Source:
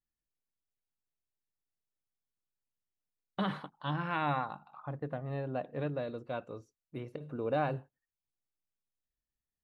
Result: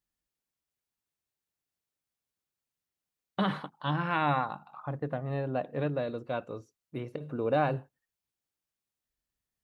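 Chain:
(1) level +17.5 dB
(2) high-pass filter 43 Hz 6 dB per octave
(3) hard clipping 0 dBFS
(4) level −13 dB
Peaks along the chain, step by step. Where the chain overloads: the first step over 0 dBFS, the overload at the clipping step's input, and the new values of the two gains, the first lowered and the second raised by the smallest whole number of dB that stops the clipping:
−2.0, −2.0, −2.0, −15.0 dBFS
no step passes full scale

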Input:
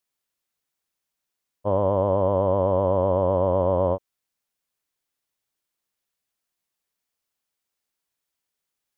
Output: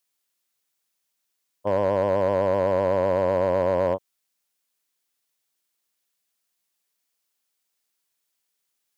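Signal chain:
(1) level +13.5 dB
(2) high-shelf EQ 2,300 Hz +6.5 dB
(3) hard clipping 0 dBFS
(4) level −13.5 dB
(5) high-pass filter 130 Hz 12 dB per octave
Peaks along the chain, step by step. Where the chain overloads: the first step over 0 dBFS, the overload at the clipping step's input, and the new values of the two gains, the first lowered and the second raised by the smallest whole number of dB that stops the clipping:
+3.5, +4.0, 0.0, −13.5, −12.0 dBFS
step 1, 4.0 dB
step 1 +9.5 dB, step 4 −9.5 dB

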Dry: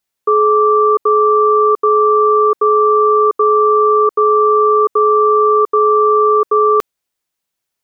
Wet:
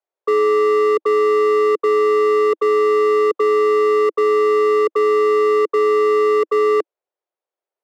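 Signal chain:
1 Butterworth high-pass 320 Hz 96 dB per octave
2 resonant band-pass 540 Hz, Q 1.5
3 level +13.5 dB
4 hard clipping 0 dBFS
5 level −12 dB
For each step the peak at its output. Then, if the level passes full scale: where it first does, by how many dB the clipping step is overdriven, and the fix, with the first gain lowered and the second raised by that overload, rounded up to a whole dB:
−4.5, −9.0, +4.5, 0.0, −12.0 dBFS
step 3, 4.5 dB
step 3 +8.5 dB, step 5 −7 dB

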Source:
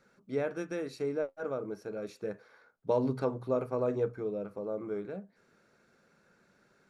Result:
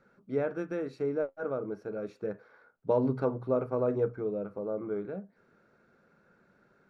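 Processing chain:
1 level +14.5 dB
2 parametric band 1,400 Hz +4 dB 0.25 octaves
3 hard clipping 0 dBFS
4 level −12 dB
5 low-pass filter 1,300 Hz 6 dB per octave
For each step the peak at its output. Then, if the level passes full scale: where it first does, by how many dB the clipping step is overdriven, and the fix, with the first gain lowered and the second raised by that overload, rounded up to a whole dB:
−3.0, −3.0, −3.0, −15.0, −16.0 dBFS
no step passes full scale

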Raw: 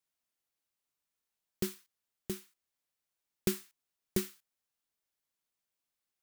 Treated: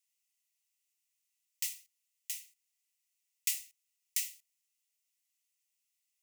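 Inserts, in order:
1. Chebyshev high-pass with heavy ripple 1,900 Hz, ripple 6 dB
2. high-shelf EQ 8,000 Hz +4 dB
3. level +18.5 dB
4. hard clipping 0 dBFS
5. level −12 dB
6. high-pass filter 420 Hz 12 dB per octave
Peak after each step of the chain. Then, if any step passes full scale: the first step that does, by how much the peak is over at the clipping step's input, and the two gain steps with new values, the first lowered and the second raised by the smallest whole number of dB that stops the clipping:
−24.0, −21.5, −3.0, −3.0, −15.0, −15.0 dBFS
no step passes full scale

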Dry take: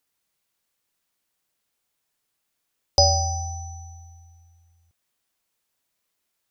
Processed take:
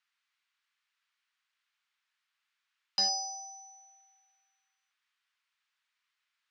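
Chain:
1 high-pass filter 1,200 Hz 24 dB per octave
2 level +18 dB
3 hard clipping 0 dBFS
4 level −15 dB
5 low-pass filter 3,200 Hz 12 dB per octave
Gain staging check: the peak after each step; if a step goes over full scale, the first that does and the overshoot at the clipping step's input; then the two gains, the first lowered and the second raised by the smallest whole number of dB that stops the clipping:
−10.0, +8.0, 0.0, −15.0, −19.5 dBFS
step 2, 8.0 dB
step 2 +10 dB, step 4 −7 dB

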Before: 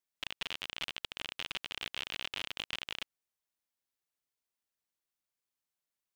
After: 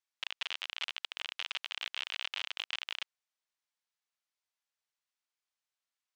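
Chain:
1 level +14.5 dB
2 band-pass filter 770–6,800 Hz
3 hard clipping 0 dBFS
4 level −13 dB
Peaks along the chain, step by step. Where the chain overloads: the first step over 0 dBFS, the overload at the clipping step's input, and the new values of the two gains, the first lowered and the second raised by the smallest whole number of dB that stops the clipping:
−3.5, −5.0, −5.0, −18.0 dBFS
no step passes full scale

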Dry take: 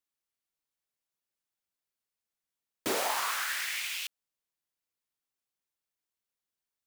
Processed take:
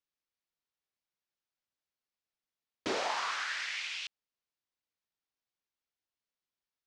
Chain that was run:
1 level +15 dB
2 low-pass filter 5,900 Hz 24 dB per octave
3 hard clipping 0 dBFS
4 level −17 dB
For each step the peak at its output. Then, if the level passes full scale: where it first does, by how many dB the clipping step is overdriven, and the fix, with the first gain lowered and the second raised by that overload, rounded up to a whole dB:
−2.5, −3.5, −3.5, −20.5 dBFS
no step passes full scale

